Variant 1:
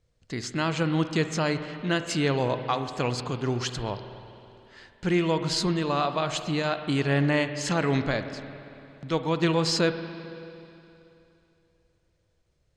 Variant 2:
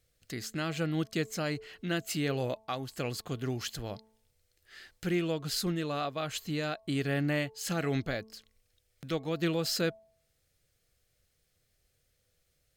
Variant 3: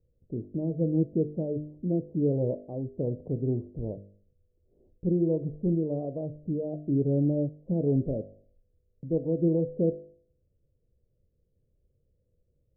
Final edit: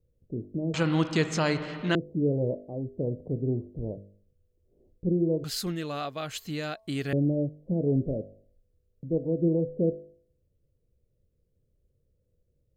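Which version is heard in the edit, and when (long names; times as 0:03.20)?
3
0:00.74–0:01.95: punch in from 1
0:05.44–0:07.13: punch in from 2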